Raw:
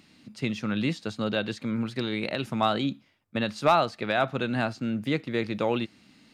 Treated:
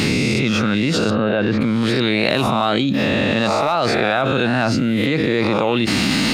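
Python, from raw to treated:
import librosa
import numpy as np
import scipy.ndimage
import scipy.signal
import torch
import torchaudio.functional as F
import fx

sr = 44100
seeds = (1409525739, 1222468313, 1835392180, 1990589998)

y = fx.spec_swells(x, sr, rise_s=0.8)
y = fx.lowpass(y, sr, hz=2000.0, slope=12, at=(1.1, 1.61))
y = fx.env_flatten(y, sr, amount_pct=100)
y = y * librosa.db_to_amplitude(-2.0)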